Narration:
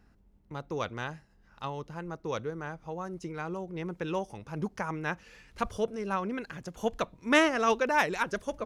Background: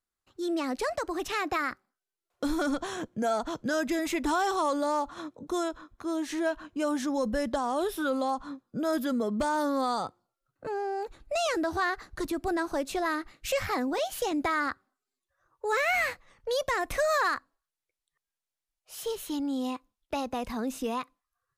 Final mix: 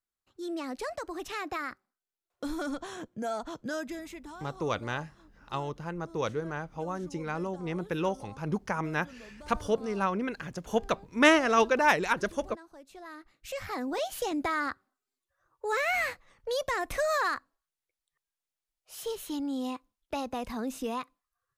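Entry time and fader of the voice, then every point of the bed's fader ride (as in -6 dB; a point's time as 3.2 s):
3.90 s, +2.5 dB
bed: 3.74 s -5.5 dB
4.45 s -21 dB
12.78 s -21 dB
13.97 s -2 dB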